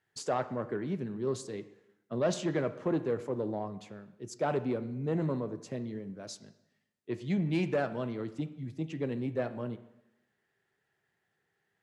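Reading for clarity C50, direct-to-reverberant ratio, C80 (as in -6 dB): 14.0 dB, 11.5 dB, 16.0 dB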